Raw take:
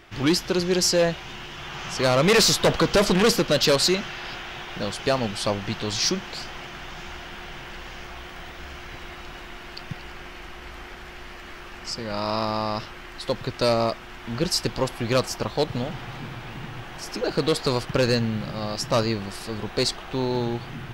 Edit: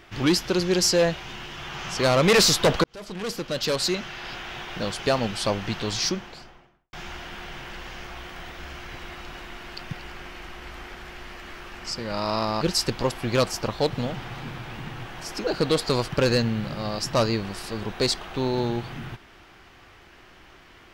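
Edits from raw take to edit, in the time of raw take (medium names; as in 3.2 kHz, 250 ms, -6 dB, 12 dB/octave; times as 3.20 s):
2.84–4.54 s: fade in
5.83–6.93 s: studio fade out
12.61–14.38 s: delete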